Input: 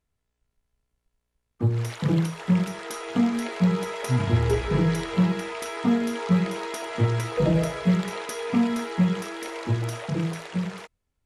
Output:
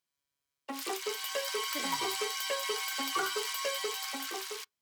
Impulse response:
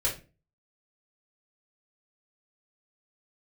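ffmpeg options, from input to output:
-filter_complex "[0:a]highpass=frequency=1300:poles=1,asplit=2[link_01][link_02];[1:a]atrim=start_sample=2205,lowpass=1700[link_03];[link_02][link_03]afir=irnorm=-1:irlink=0,volume=-29dB[link_04];[link_01][link_04]amix=inputs=2:normalize=0,asetrate=103194,aresample=44100,volume=1.5dB"

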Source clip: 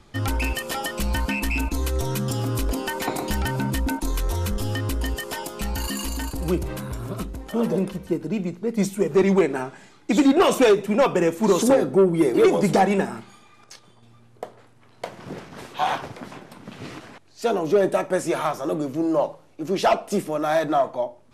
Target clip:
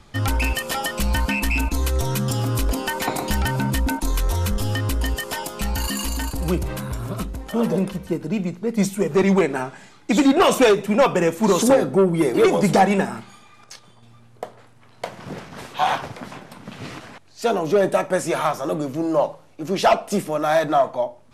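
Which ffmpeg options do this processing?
ffmpeg -i in.wav -af "equalizer=frequency=350:width=1.8:gain=-4.5,volume=3.5dB" out.wav

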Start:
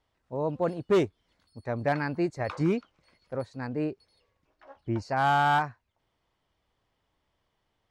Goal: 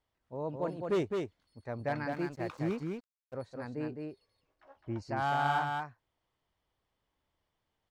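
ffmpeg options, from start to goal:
ffmpeg -i in.wav -filter_complex "[0:a]aecho=1:1:210:0.631,asettb=1/sr,asplit=3[link_01][link_02][link_03];[link_01]atrim=end=2.124[link_04];[link_02]atrim=start=2.12:end=3.34,asetpts=PTS-STARTPTS,afade=type=in:duration=0.004:curve=qsin,afade=type=out:start_time=1.216:duration=0.004:curve=qsin,aeval=exprs='sgn(val(0))*max(abs(val(0))-0.00473,0)':channel_layout=same[link_05];[link_03]atrim=start=3.336[link_06];[link_04][link_05]acrossfade=duration=0.004:curve1=hsin:curve2=qsin[link_07];[link_07][link_06]acrossfade=duration=0.004:curve1=qsin:curve2=hsin,volume=-7.5dB" out.wav

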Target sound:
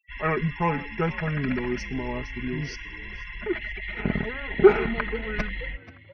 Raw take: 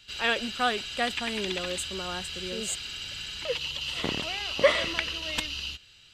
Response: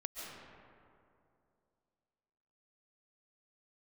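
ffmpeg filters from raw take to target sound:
-filter_complex "[0:a]bandreject=frequency=1700:width=15,afftfilt=real='re*gte(hypot(re,im),0.01)':imag='im*gte(hypot(re,im),0.01)':win_size=1024:overlap=0.75,bass=frequency=250:gain=5,treble=frequency=4000:gain=-11,aecho=1:1:3.3:0.66,bandreject=frequency=412:width_type=h:width=4,bandreject=frequency=824:width_type=h:width=4,bandreject=frequency=1236:width_type=h:width=4,bandreject=frequency=1648:width_type=h:width=4,bandreject=frequency=2060:width_type=h:width=4,bandreject=frequency=2472:width_type=h:width=4,bandreject=frequency=2884:width_type=h:width=4,bandreject=frequency=3296:width_type=h:width=4,bandreject=frequency=3708:width_type=h:width=4,bandreject=frequency=4120:width_type=h:width=4,bandreject=frequency=4532:width_type=h:width=4,bandreject=frequency=4944:width_type=h:width=4,bandreject=frequency=5356:width_type=h:width=4,bandreject=frequency=5768:width_type=h:width=4,bandreject=frequency=6180:width_type=h:width=4,bandreject=frequency=6592:width_type=h:width=4,bandreject=frequency=7004:width_type=h:width=4,bandreject=frequency=7416:width_type=h:width=4,bandreject=frequency=7828:width_type=h:width=4,bandreject=frequency=8240:width_type=h:width=4,bandreject=frequency=8652:width_type=h:width=4,bandreject=frequency=9064:width_type=h:width=4,bandreject=frequency=9476:width_type=h:width=4,bandreject=frequency=9888:width_type=h:width=4,bandreject=frequency=10300:width_type=h:width=4,bandreject=frequency=10712:width_type=h:width=4,bandreject=frequency=11124:width_type=h:width=4,acrossover=split=730[link_01][link_02];[link_01]acontrast=23[link_03];[link_03][link_02]amix=inputs=2:normalize=0,asetrate=30296,aresample=44100,atempo=1.45565,asplit=2[link_04][link_05];[link_05]asplit=3[link_06][link_07][link_08];[link_06]adelay=483,afreqshift=56,volume=-19.5dB[link_09];[link_07]adelay=966,afreqshift=112,volume=-28.6dB[link_10];[link_08]adelay=1449,afreqshift=168,volume=-37.7dB[link_11];[link_09][link_10][link_11]amix=inputs=3:normalize=0[link_12];[link_04][link_12]amix=inputs=2:normalize=0"

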